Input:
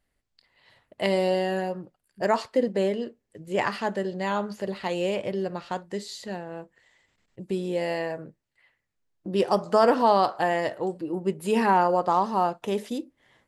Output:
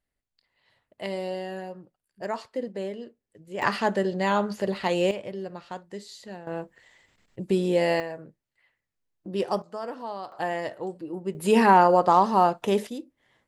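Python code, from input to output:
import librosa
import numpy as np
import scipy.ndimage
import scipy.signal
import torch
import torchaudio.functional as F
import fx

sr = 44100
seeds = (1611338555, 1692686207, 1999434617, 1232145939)

y = fx.gain(x, sr, db=fx.steps((0.0, -8.0), (3.62, 3.5), (5.11, -6.0), (6.47, 5.0), (8.0, -4.0), (9.62, -15.5), (10.32, -4.5), (11.35, 4.0), (12.87, -4.5)))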